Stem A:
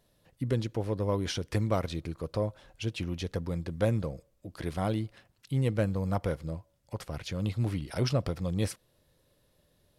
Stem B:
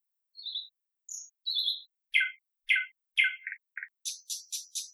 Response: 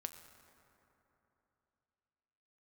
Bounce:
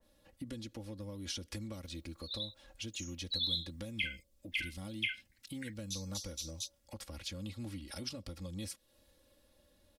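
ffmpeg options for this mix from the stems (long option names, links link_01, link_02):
-filter_complex "[0:a]aecho=1:1:3.6:0.88,acompressor=threshold=-44dB:ratio=2,adynamicequalizer=threshold=0.00112:dfrequency=2200:dqfactor=0.7:tfrequency=2200:tqfactor=0.7:attack=5:release=100:ratio=0.375:range=3:mode=boostabove:tftype=highshelf,volume=-2.5dB,asplit=2[link_01][link_02];[1:a]equalizer=frequency=10000:width_type=o:width=1.4:gain=-11.5,adelay=1850,volume=0.5dB[link_03];[link_02]apad=whole_len=299120[link_04];[link_03][link_04]sidechaingate=range=-30dB:threshold=-55dB:ratio=16:detection=peak[link_05];[link_01][link_05]amix=inputs=2:normalize=0,acrossover=split=290|3000[link_06][link_07][link_08];[link_07]acompressor=threshold=-50dB:ratio=6[link_09];[link_06][link_09][link_08]amix=inputs=3:normalize=0"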